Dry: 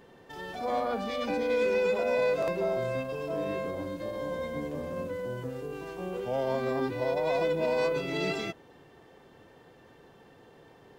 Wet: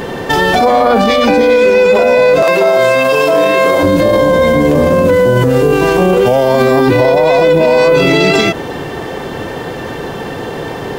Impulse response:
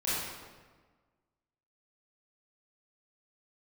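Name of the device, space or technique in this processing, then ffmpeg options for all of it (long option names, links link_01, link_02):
loud club master: -filter_complex "[0:a]asettb=1/sr,asplit=3[link_01][link_02][link_03];[link_01]atrim=end=2.434[link_04];[link_02]atrim=start=2.43:end=3.83,asetpts=PTS-STARTPTS,afade=type=in:duration=0.004:curve=qsin,afade=type=out:start_time=1.396:duration=0.004:curve=qsin,highpass=frequency=890:poles=1[link_05];[link_03]atrim=start=3.826[link_06];[link_04][link_05]acrossfade=duration=0.004:curve1=hsin:curve2=qsin[link_07];[link_07][link_06]acrossfade=duration=0.004:curve1=qsin:curve2=hsin,acompressor=threshold=-30dB:ratio=2.5,asoftclip=type=hard:threshold=-24dB,alimiter=level_in=34.5dB:limit=-1dB:release=50:level=0:latency=1,asettb=1/sr,asplit=3[link_08][link_09][link_10];[link_08]atrim=end=6.264[link_11];[link_09]atrim=start=6.26:end=6.87,asetpts=PTS-STARTPTS,afade=type=in:duration=0.004:curve=qsin,afade=type=out:start_time=0.606:duration=0.004:curve=qsin,highshelf=frequency=7000:gain=8.5[link_12];[link_10]atrim=start=6.866[link_13];[link_11][link_12]acrossfade=duration=0.004:curve1=hsin:curve2=qsin[link_14];[link_14][link_13]acrossfade=duration=0.004:curve1=qsin:curve2=hsin,volume=-1dB"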